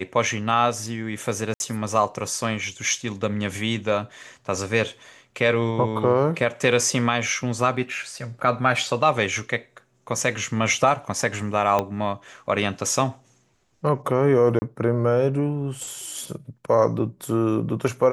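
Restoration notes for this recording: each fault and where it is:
1.54–1.60 s: dropout 61 ms
11.79 s: pop -9 dBFS
14.59–14.62 s: dropout 30 ms

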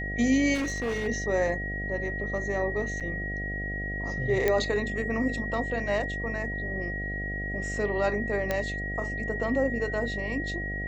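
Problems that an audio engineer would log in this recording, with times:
buzz 50 Hz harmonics 15 -35 dBFS
whine 1.9 kHz -33 dBFS
0.54–1.08 s: clipped -26 dBFS
3.00–3.01 s: dropout 6.8 ms
4.48 s: pop -11 dBFS
8.51 s: pop -13 dBFS

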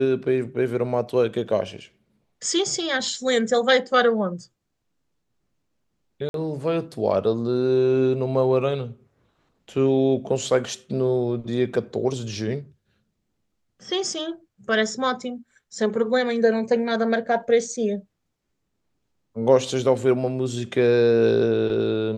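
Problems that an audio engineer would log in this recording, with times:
6.29–6.34 s: dropout 52 ms

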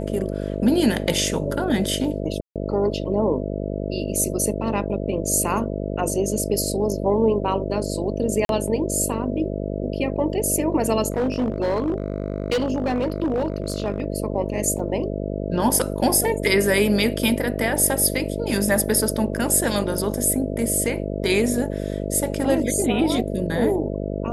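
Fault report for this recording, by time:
buzz 50 Hz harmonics 13 -27 dBFS
2.41–2.56 s: dropout 147 ms
8.45–8.49 s: dropout 42 ms
11.10–14.04 s: clipped -17.5 dBFS
14.79 s: dropout 3.3 ms

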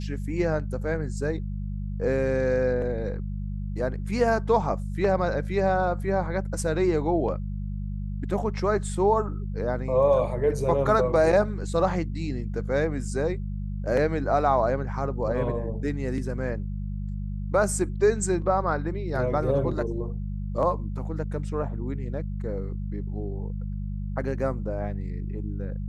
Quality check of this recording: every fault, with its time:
hum 50 Hz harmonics 4 -31 dBFS

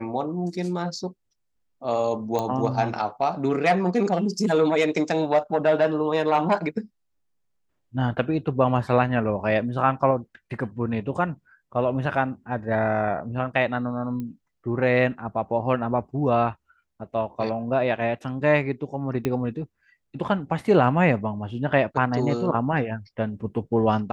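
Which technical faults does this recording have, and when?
2.39 s: pop -14 dBFS
14.20 s: pop -22 dBFS
19.25 s: pop -13 dBFS

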